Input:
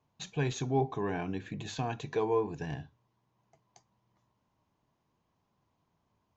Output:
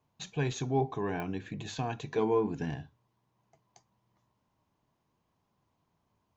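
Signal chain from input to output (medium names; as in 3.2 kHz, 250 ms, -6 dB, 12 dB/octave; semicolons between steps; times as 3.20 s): 2.18–2.70 s: small resonant body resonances 240/1400/2100/3100 Hz, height 12 dB; clicks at 1.20 s, -25 dBFS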